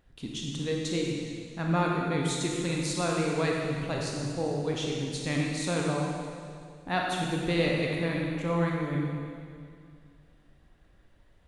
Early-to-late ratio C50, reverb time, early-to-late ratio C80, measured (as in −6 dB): −0.5 dB, 2.3 s, 1.0 dB